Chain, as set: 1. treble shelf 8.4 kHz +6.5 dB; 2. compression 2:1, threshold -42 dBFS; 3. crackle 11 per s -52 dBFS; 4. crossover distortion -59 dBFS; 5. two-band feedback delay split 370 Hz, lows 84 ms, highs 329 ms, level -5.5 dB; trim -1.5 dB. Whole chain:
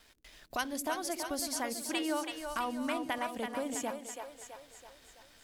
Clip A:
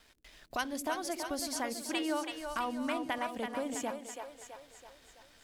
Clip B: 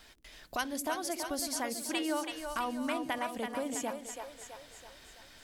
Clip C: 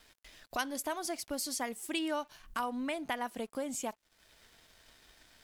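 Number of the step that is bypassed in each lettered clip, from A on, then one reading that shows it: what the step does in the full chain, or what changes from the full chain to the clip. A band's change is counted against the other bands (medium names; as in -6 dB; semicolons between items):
1, 8 kHz band -2.5 dB; 4, distortion -25 dB; 5, echo-to-direct -4.0 dB to none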